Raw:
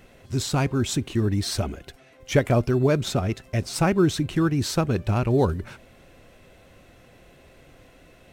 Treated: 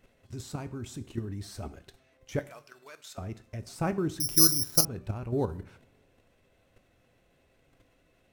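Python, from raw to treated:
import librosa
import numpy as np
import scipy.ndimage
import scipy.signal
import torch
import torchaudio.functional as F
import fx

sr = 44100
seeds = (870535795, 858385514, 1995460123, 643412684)

y = fx.bessel_highpass(x, sr, hz=1900.0, order=2, at=(2.39, 3.18))
y = fx.dynamic_eq(y, sr, hz=3300.0, q=0.76, threshold_db=-43.0, ratio=4.0, max_db=-6)
y = fx.level_steps(y, sr, step_db=10)
y = fx.rev_double_slope(y, sr, seeds[0], early_s=0.48, late_s=2.4, knee_db=-25, drr_db=11.0)
y = fx.resample_bad(y, sr, factor=8, down='filtered', up='zero_stuff', at=(4.2, 4.85))
y = y * 10.0 ** (-7.0 / 20.0)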